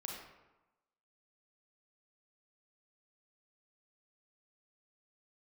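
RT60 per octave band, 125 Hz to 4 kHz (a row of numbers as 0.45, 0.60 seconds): 1.0, 1.0, 1.0, 1.1, 0.85, 0.65 seconds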